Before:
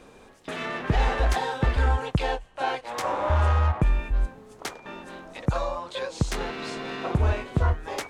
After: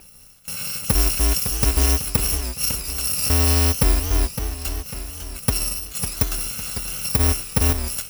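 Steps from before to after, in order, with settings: bit-reversed sample order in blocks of 128 samples; short-mantissa float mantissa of 2-bit; modulated delay 554 ms, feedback 48%, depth 187 cents, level -9 dB; trim +3.5 dB

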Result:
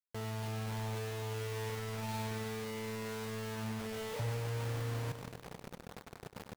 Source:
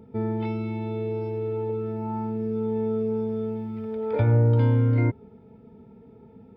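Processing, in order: treble shelf 2.2 kHz -12 dB; comb 6.2 ms, depth 40%; reverse; compression 4:1, threshold -36 dBFS, peak gain reduction 16.5 dB; reverse; peak limiter -33.5 dBFS, peak gain reduction 6.5 dB; static phaser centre 770 Hz, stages 4; bit crusher 8-bit; on a send: feedback delay 99 ms, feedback 55%, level -9.5 dB; on the sum: trim +5.5 dB

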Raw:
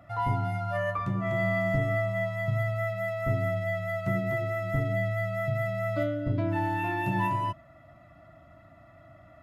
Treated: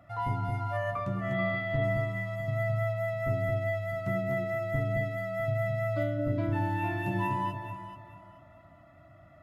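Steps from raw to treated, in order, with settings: 1.33–1.84 s: resonant high shelf 4.9 kHz -8.5 dB, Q 3; on a send: echo whose repeats swap between lows and highs 217 ms, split 840 Hz, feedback 51%, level -4 dB; on the sum: trim -3.5 dB

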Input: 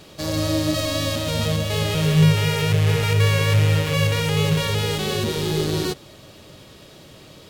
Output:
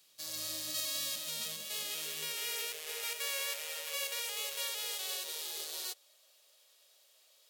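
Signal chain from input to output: high-pass sweep 110 Hz -> 560 Hz, 0.69–3.16 s; differentiator; upward expansion 1.5:1, over -47 dBFS; trim -4 dB

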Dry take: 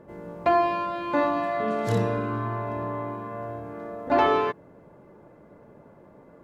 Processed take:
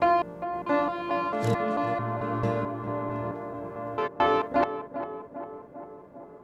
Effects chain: slices played last to first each 221 ms, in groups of 3; tape echo 400 ms, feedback 74%, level -8 dB, low-pass 1.2 kHz; trim -1.5 dB

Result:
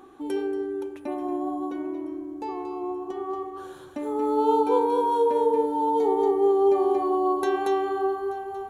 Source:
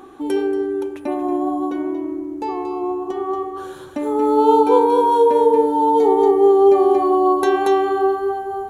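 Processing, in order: thinning echo 882 ms, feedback 59%, high-pass 840 Hz, level -20 dB; trim -8 dB

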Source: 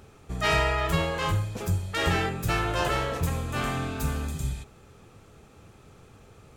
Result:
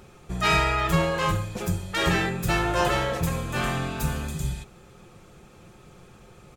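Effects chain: comb 5.6 ms, depth 48%; trim +2 dB

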